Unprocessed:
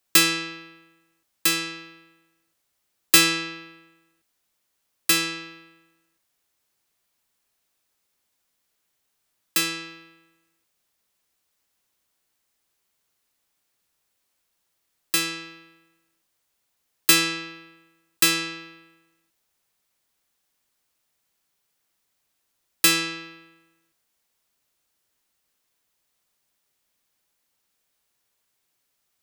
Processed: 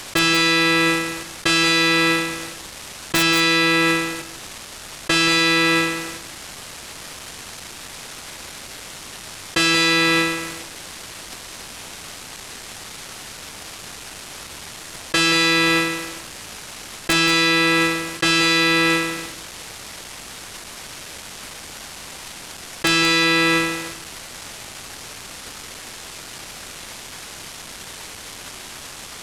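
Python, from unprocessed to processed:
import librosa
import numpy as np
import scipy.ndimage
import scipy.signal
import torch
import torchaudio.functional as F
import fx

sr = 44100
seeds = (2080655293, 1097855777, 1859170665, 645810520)

y = fx.cvsd(x, sr, bps=64000)
y = fx.high_shelf(y, sr, hz=10000.0, db=-11.0)
y = (np.mod(10.0 ** (11.5 / 20.0) * y + 1.0, 2.0) - 1.0) / 10.0 ** (11.5 / 20.0)
y = y + 10.0 ** (-14.5 / 20.0) * np.pad(y, (int(178 * sr / 1000.0), 0))[:len(y)]
y = fx.env_flatten(y, sr, amount_pct=100)
y = F.gain(torch.from_numpy(y), 2.0).numpy()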